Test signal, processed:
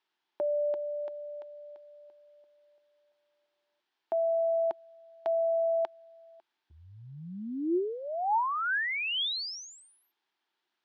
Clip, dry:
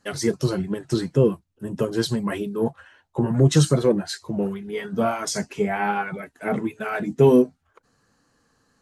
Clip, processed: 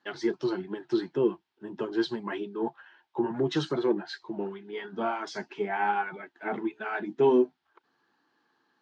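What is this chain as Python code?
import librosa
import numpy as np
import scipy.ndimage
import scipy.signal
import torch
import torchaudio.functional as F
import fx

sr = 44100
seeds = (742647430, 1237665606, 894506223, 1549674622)

y = fx.quant_dither(x, sr, seeds[0], bits=12, dither='triangular')
y = fx.cabinet(y, sr, low_hz=270.0, low_slope=12, high_hz=4600.0, hz=(350.0, 520.0, 880.0, 1600.0, 3300.0), db=(10, -8, 9, 5, 4))
y = F.gain(torch.from_numpy(y), -8.0).numpy()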